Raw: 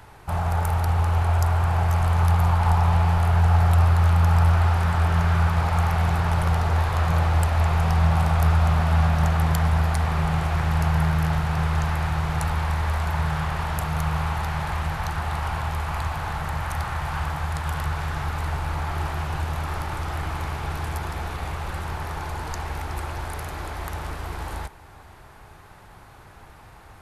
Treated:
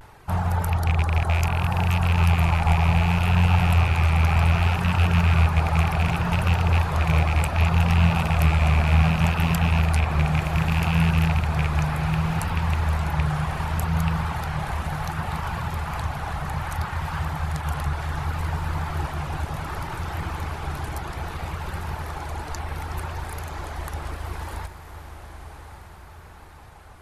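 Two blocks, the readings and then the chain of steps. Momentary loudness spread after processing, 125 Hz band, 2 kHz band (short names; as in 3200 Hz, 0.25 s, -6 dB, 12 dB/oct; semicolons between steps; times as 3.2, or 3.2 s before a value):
13 LU, 0.0 dB, +2.0 dB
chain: rattling part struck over -17 dBFS, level -15 dBFS; reverb removal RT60 0.73 s; dynamic EQ 180 Hz, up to +5 dB, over -35 dBFS, Q 0.73; on a send: diffused feedback echo 1.108 s, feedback 45%, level -10 dB; on the sum: vibrato 0.66 Hz 63 cents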